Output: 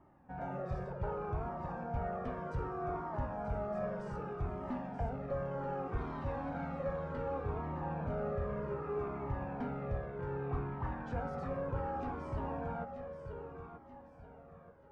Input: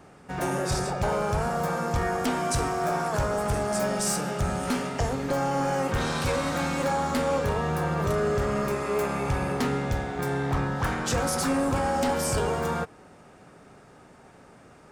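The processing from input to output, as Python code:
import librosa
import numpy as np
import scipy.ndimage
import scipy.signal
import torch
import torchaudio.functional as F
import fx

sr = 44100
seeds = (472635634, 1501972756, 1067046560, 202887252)

y = fx.rattle_buzz(x, sr, strikes_db=-30.0, level_db=-32.0)
y = scipy.signal.sosfilt(scipy.signal.butter(2, 1200.0, 'lowpass', fs=sr, output='sos'), y)
y = fx.echo_feedback(y, sr, ms=932, feedback_pct=38, wet_db=-9.0)
y = fx.comb_cascade(y, sr, direction='falling', hz=0.65)
y = y * librosa.db_to_amplitude(-7.0)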